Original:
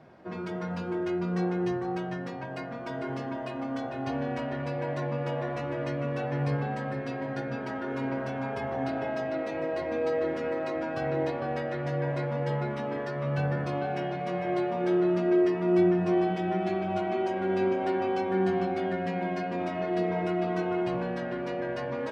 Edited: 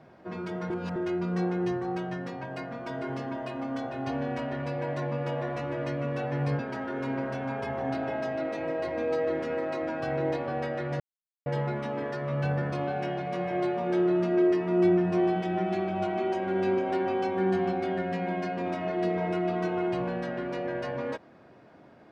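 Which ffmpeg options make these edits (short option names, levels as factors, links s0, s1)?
-filter_complex "[0:a]asplit=6[s0][s1][s2][s3][s4][s5];[s0]atrim=end=0.702[s6];[s1]atrim=start=0.698:end=0.962,asetpts=PTS-STARTPTS,areverse[s7];[s2]atrim=start=0.958:end=6.592[s8];[s3]atrim=start=7.528:end=11.94,asetpts=PTS-STARTPTS,afade=t=out:st=4.408:d=0.004:c=hsin[s9];[s4]atrim=start=11.94:end=12.4,asetpts=PTS-STARTPTS,volume=0[s10];[s5]atrim=start=12.4,asetpts=PTS-STARTPTS,afade=t=in:d=0.004:c=hsin[s11];[s6][s7]acrossfade=d=0.004:c1=hsin:c2=hsin[s12];[s12][s8]acrossfade=d=0.004:c1=hsin:c2=hsin[s13];[s9][s10][s11]concat=n=3:v=0:a=1[s14];[s13][s14]acrossfade=d=0.004:c1=hsin:c2=hsin"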